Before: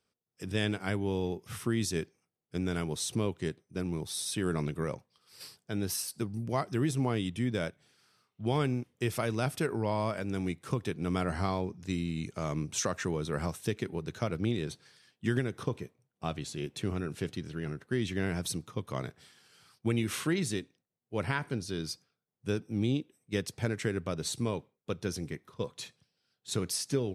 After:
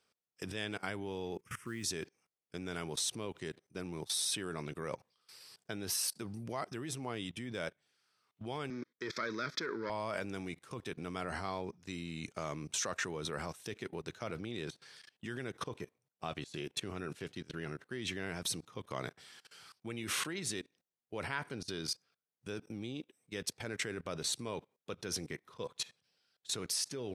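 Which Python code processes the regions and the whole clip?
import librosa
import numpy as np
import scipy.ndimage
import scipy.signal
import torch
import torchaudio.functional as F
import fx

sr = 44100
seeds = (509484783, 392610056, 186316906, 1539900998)

y = fx.chain(x, sr, fx.lowpass(hz=11000.0, slope=12),
    fx.fixed_phaser(hz=1700.0, stages=4),
    fx.mod_noise(seeds[0], snr_db=30), at=(1.38, 1.84))
y = fx.chain(y, sr, fx.leveller(passes=2),
    fx.bandpass_edges(low_hz=260.0, high_hz=5000.0),
    fx.fixed_phaser(hz=2800.0, stages=6), at=(8.7, 9.9))
y = fx.high_shelf(y, sr, hz=10000.0, db=-5.5)
y = fx.level_steps(y, sr, step_db=21)
y = fx.low_shelf(y, sr, hz=310.0, db=-11.5)
y = y * librosa.db_to_amplitude(7.5)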